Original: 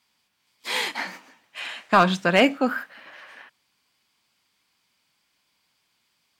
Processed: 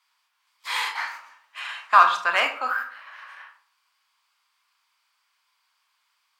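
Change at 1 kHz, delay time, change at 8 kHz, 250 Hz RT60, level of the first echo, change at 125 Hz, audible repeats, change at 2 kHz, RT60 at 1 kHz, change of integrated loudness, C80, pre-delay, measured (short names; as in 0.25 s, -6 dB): +4.0 dB, none, n/a, 0.55 s, none, under -30 dB, none, +1.5 dB, 0.50 s, +0.5 dB, 13.5 dB, 24 ms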